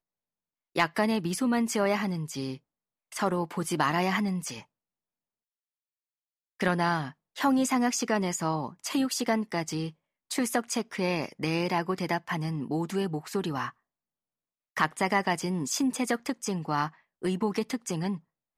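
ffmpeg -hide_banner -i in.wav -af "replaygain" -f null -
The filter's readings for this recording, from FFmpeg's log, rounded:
track_gain = +9.8 dB
track_peak = 0.218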